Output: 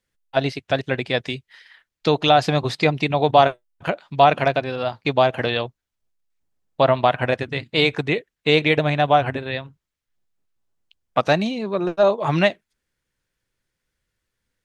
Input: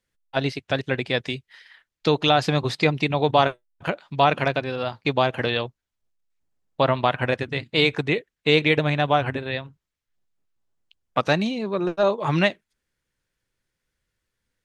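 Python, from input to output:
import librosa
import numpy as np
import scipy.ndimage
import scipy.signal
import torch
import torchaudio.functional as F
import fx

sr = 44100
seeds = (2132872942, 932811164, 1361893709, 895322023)

y = fx.dynamic_eq(x, sr, hz=680.0, q=3.5, threshold_db=-35.0, ratio=4.0, max_db=6)
y = F.gain(torch.from_numpy(y), 1.0).numpy()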